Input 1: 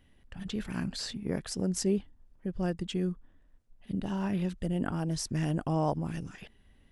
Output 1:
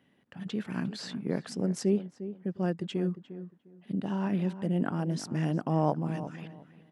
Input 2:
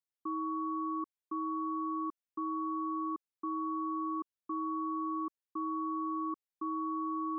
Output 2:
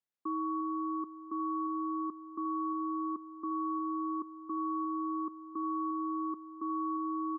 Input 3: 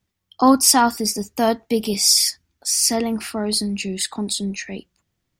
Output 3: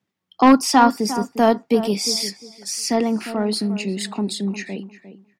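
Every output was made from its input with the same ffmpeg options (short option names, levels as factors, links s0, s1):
-filter_complex "[0:a]highpass=f=140:w=0.5412,highpass=f=140:w=1.3066,highshelf=f=3900:g=-10,acrossover=split=6200[s0][s1];[s0]aeval=exprs='0.891*(cos(1*acos(clip(val(0)/0.891,-1,1)))-cos(1*PI/2))+0.158*(cos(5*acos(clip(val(0)/0.891,-1,1)))-cos(5*PI/2))+0.1*(cos(7*acos(clip(val(0)/0.891,-1,1)))-cos(7*PI/2))':c=same[s2];[s1]acompressor=threshold=0.0282:ratio=6[s3];[s2][s3]amix=inputs=2:normalize=0,asplit=2[s4][s5];[s5]adelay=353,lowpass=f=1500:p=1,volume=0.251,asplit=2[s6][s7];[s7]adelay=353,lowpass=f=1500:p=1,volume=0.22,asplit=2[s8][s9];[s9]adelay=353,lowpass=f=1500:p=1,volume=0.22[s10];[s4][s6][s8][s10]amix=inputs=4:normalize=0,volume=1.12"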